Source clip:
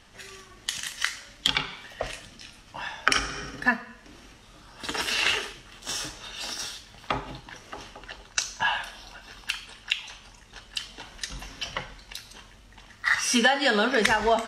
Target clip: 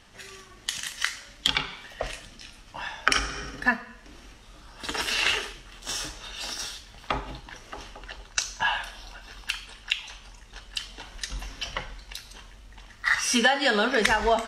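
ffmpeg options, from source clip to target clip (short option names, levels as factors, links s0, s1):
-af "asubboost=boost=2.5:cutoff=65"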